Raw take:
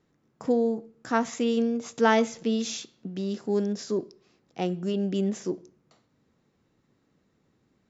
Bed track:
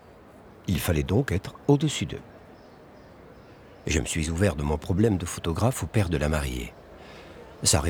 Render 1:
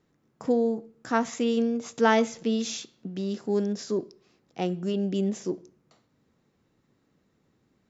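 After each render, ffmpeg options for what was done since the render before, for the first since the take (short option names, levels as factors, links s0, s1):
-filter_complex "[0:a]asettb=1/sr,asplit=3[s0][s1][s2];[s0]atrim=end=5.004[s3];[s1]atrim=start=5:end=5.49,asetpts=PTS-STARTPTS,afade=t=in:d=0.004:c=qsin,afade=t=out:st=0.486:d=0.004:c=qsin,equalizer=f=1500:w=1.5:g=-4[s4];[s2]atrim=start=5.486[s5];[s3][s4]acrossfade=d=0.004:c1=hsin:c2=qsin[s6];[s6][s5]acrossfade=d=0.004:c1=qsin:c2=hsin"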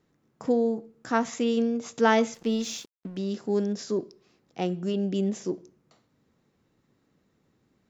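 -filter_complex "[0:a]asettb=1/sr,asplit=3[s0][s1][s2];[s0]atrim=end=2.344[s3];[s1]atrim=start=2.34:end=3.17,asetpts=PTS-STARTPTS,afade=t=in:d=0.004:c=qsin,afade=t=out:st=0.826:d=0.004:c=qsin,aeval=exprs='sgn(val(0))*max(abs(val(0))-0.00335,0)':c=same[s4];[s2]atrim=start=3.166[s5];[s3][s4]acrossfade=d=0.004:c1=hsin:c2=qsin[s6];[s6][s5]acrossfade=d=0.004:c1=qsin:c2=hsin"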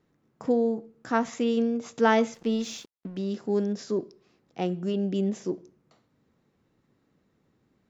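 -af "highshelf=f=4800:g=-6.5"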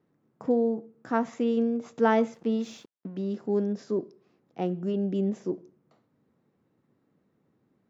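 -af "highpass=110,highshelf=f=2200:g=-11.5"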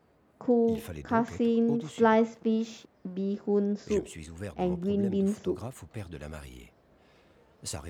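-filter_complex "[1:a]volume=0.158[s0];[0:a][s0]amix=inputs=2:normalize=0"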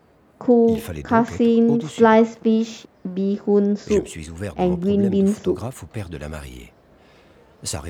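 -af "volume=2.99,alimiter=limit=0.794:level=0:latency=1"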